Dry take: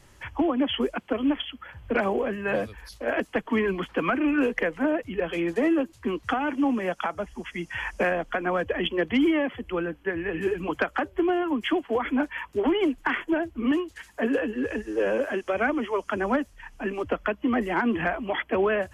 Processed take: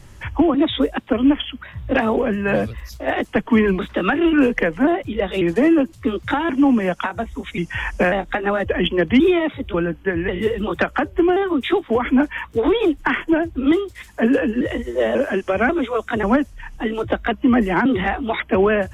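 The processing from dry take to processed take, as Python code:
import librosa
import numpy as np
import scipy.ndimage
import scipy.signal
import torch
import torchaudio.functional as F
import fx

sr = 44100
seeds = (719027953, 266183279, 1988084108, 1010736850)

y = fx.pitch_trill(x, sr, semitones=2.0, every_ms=541)
y = fx.bass_treble(y, sr, bass_db=8, treble_db=0)
y = y * 10.0 ** (6.0 / 20.0)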